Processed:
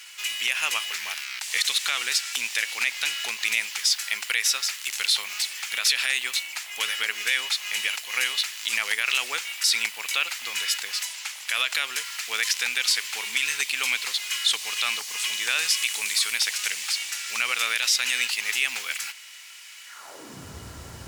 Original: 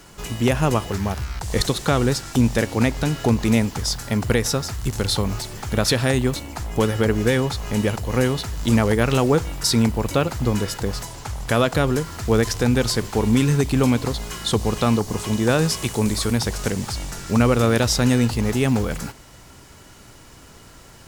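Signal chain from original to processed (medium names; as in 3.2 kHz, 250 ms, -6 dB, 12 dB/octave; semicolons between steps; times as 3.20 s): high-pass sweep 2.4 kHz -> 71 Hz, 19.85–20.54 s; peak limiter -14 dBFS, peak gain reduction 8 dB; trim +3.5 dB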